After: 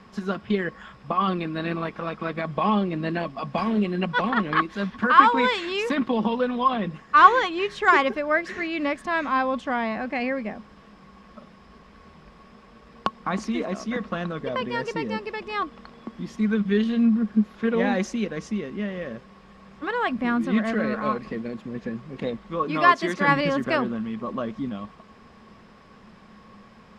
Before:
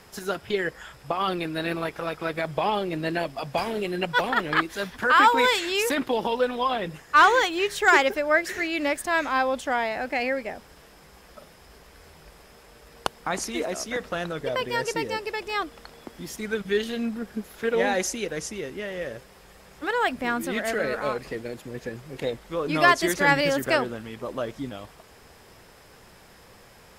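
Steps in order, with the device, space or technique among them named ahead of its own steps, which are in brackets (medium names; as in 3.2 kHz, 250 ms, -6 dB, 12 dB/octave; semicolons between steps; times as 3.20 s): 22.64–23.28 s: high-pass 250 Hz 6 dB/octave; inside a cardboard box (low-pass 4 kHz 12 dB/octave; small resonant body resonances 210/1100 Hz, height 16 dB, ringing for 75 ms); trim -2 dB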